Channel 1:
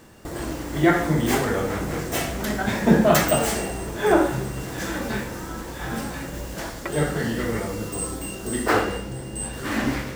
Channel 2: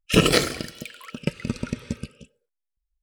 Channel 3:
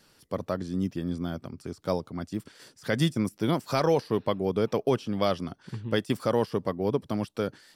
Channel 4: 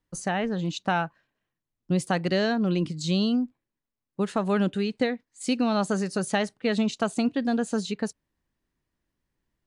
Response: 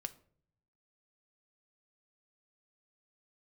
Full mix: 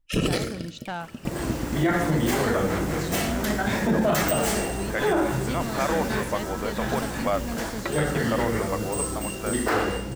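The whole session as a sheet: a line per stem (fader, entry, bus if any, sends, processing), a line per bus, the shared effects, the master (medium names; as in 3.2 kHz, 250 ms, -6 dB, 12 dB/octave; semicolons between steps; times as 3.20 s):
+0.5 dB, 1.00 s, no send, none
-4.5 dB, 0.00 s, send -4 dB, bass shelf 370 Hz +9.5 dB; auto duck -16 dB, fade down 0.50 s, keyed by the fourth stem
-10.5 dB, 2.05 s, no send, high-order bell 1.2 kHz +13.5 dB 2.6 oct
-7.5 dB, 0.00 s, no send, one-sided wavefolder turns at -21.5 dBFS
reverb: on, RT60 0.55 s, pre-delay 3 ms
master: peak limiter -13.5 dBFS, peak gain reduction 10.5 dB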